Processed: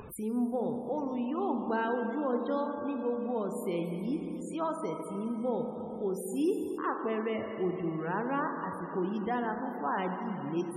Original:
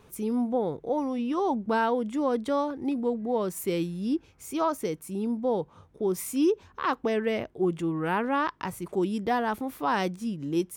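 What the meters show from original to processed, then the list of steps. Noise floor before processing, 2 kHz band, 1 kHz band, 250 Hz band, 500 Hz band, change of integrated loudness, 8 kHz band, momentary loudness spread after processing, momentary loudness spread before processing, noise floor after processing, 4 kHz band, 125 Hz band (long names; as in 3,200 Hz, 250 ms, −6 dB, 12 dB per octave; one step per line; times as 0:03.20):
−58 dBFS, −5.5 dB, −5.0 dB, −4.5 dB, −4.5 dB, −4.5 dB, −9.5 dB, 5 LU, 6 LU, −40 dBFS, −10.5 dB, −4.0 dB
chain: four-comb reverb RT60 3.6 s, combs from 29 ms, DRR 3 dB
upward compression, threshold −27 dBFS
spectral peaks only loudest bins 64
level −6.5 dB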